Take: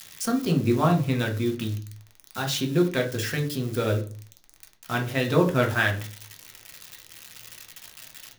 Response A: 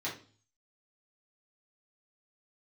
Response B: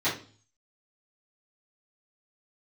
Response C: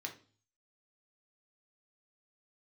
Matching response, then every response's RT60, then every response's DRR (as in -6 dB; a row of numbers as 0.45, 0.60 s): C; 0.40, 0.40, 0.40 s; -7.5, -14.0, 1.5 dB